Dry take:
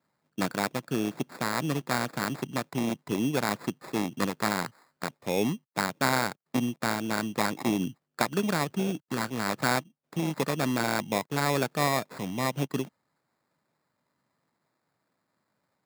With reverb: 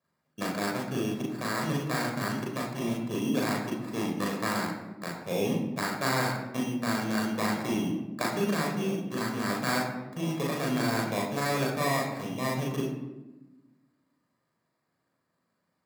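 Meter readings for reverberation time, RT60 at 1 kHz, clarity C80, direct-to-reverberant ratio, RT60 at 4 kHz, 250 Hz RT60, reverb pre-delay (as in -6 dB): 1.1 s, 0.90 s, 6.5 dB, -2.5 dB, 0.65 s, 1.8 s, 35 ms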